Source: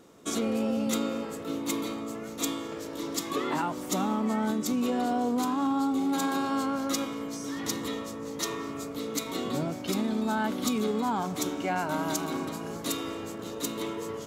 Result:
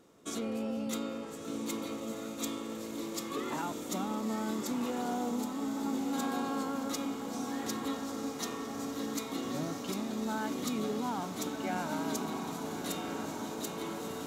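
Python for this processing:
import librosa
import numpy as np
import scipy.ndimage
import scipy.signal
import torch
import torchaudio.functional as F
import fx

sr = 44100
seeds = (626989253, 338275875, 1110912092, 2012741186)

p1 = fx.peak_eq(x, sr, hz=1300.0, db=-13.5, octaves=2.1, at=(5.36, 5.86))
p2 = 10.0 ** (-24.5 / 20.0) * np.tanh(p1 / 10.0 ** (-24.5 / 20.0))
p3 = p1 + (p2 * librosa.db_to_amplitude(-10.0))
p4 = fx.echo_diffused(p3, sr, ms=1296, feedback_pct=65, wet_db=-5.5)
y = p4 * librosa.db_to_amplitude(-9.0)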